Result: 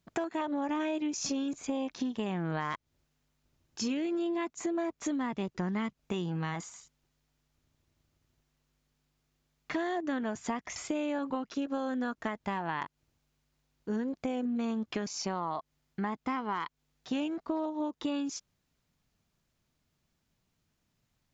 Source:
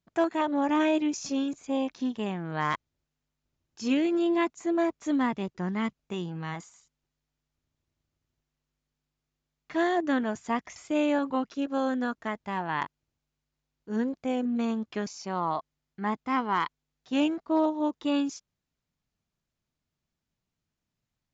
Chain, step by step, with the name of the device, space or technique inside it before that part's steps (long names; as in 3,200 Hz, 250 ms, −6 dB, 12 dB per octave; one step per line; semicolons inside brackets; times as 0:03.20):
serial compression, peaks first (downward compressor, threshold −33 dBFS, peak gain reduction 12 dB; downward compressor 2 to 1, threshold −41 dBFS, peak gain reduction 6.5 dB)
level +7.5 dB